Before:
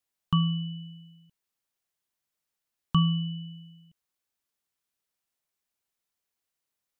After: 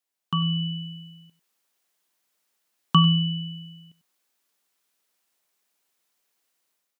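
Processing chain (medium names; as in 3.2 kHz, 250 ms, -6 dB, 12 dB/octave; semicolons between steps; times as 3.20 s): high-pass 220 Hz 12 dB/octave; level rider gain up to 10.5 dB; on a send: delay 96 ms -16 dB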